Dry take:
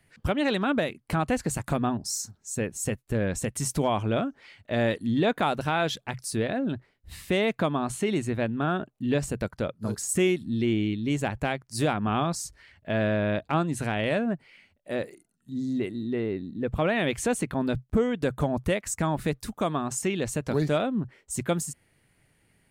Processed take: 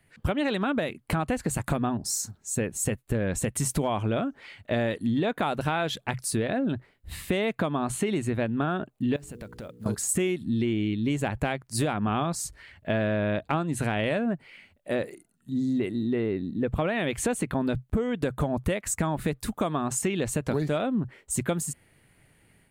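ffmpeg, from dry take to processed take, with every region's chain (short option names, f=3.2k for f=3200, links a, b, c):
-filter_complex "[0:a]asettb=1/sr,asplit=3[a][b][c];[a]atrim=end=9.164[d];[b]atrim=start=9.16:end=9.86,asetpts=PTS-STARTPTS,afade=t=in:d=0.004:c=qsin,afade=t=out:st=0.696:d=0.004:c=qsin,bandreject=f=60:t=h:w=6,bandreject=f=120:t=h:w=6,bandreject=f=180:t=h:w=6,bandreject=f=240:t=h:w=6,bandreject=f=300:t=h:w=6,bandreject=f=360:t=h:w=6,bandreject=f=420:t=h:w=6,bandreject=f=480:t=h:w=6,acompressor=threshold=-42dB:ratio=6:attack=3.2:release=140:knee=1:detection=peak,acrusher=bits=7:mode=log:mix=0:aa=0.000001[e];[c]atrim=start=9.856[f];[d][e]acrossfade=d=0.004:c1=hsin:c2=qsin[g];[g][f]acrossfade=d=0.004:c1=qsin:c2=hsin,dynaudnorm=f=130:g=3:m=5dB,equalizer=f=5.5k:w=2.2:g=-5.5,acompressor=threshold=-23dB:ratio=6"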